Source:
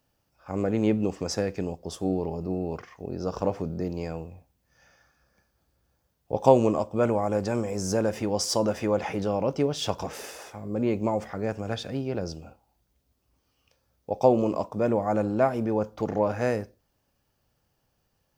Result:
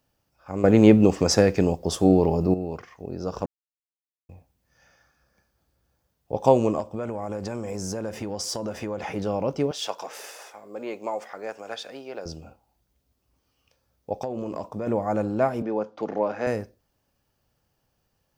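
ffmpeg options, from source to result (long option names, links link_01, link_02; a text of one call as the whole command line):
ffmpeg -i in.wav -filter_complex "[0:a]asettb=1/sr,asplit=3[link_01][link_02][link_03];[link_01]atrim=end=6.804[link_04];[link_02]atrim=start=6.8:end=9.16,asetpts=PTS-STARTPTS,afade=type=in:duration=0.004:curve=qsin,afade=type=out:start_time=2.356:duration=0.004:curve=qsin,acompressor=threshold=-26dB:ratio=6:attack=3.2:release=140:knee=1:detection=peak[link_05];[link_03]atrim=start=9.156[link_06];[link_04][link_05]acrossfade=duration=0.004:curve1=hsin:curve2=qsin[link_07];[link_07][link_06]acrossfade=duration=0.004:curve1=qsin:curve2=hsin,asettb=1/sr,asplit=3[link_08][link_09][link_10];[link_08]atrim=end=9.714[link_11];[link_09]atrim=start=9.71:end=12.26,asetpts=PTS-STARTPTS,afade=type=in:duration=0.004:curve=qsin,afade=type=out:start_time=2.546:duration=0.004:curve=qsin,highpass=530[link_12];[link_10]atrim=start=12.256[link_13];[link_11][link_12]acrossfade=duration=0.004:curve1=hsin:curve2=qsin[link_14];[link_14][link_13]acrossfade=duration=0.004:curve1=qsin:curve2=hsin,asettb=1/sr,asplit=3[link_15][link_16][link_17];[link_15]atrim=end=14.204[link_18];[link_16]atrim=start=14.2:end=14.87,asetpts=PTS-STARTPTS,afade=type=in:duration=0.004:curve=qsin,afade=type=out:start_time=0.666:duration=0.004:curve=qsin,acompressor=threshold=-26dB:ratio=8:attack=3.2:release=140:knee=1:detection=peak[link_19];[link_17]atrim=start=14.866[link_20];[link_18][link_19]acrossfade=duration=0.004:curve1=hsin:curve2=qsin[link_21];[link_21][link_20]acrossfade=duration=0.004:curve1=qsin:curve2=hsin,asettb=1/sr,asplit=3[link_22][link_23][link_24];[link_22]atrim=end=15.624[link_25];[link_23]atrim=start=15.62:end=16.47,asetpts=PTS-STARTPTS,afade=type=in:duration=0.004:curve=qsin,afade=type=out:start_time=0.846:duration=0.004:curve=qsin,acrossover=split=190 5700:gain=0.0794 1 0.141[link_26][link_27][link_28];[link_26][link_27][link_28]amix=inputs=3:normalize=0[link_29];[link_24]atrim=start=16.466[link_30];[link_25][link_29]acrossfade=duration=0.004:curve1=hsin:curve2=qsin[link_31];[link_31][link_30]acrossfade=duration=0.004:curve1=qsin:curve2=hsin,asplit=5[link_32][link_33][link_34][link_35][link_36];[link_32]atrim=end=0.642[link_37];[link_33]atrim=start=0.638:end=2.542,asetpts=PTS-STARTPTS,volume=9.5dB[link_38];[link_34]atrim=start=2.538:end=3.46,asetpts=PTS-STARTPTS,afade=type=out:start_time=0.918:duration=0.004:curve=hsin[link_39];[link_35]atrim=start=3.46:end=4.29,asetpts=PTS-STARTPTS,volume=0[link_40];[link_36]atrim=start=4.29,asetpts=PTS-STARTPTS,afade=type=in:duration=0.004:curve=hsin[link_41];[link_37][link_38]acrossfade=duration=0.004:curve1=hsin:curve2=hsin[link_42];[link_39][link_40][link_41]concat=n=3:v=0:a=1[link_43];[link_42][link_43]acrossfade=duration=0.004:curve1=hsin:curve2=hsin" out.wav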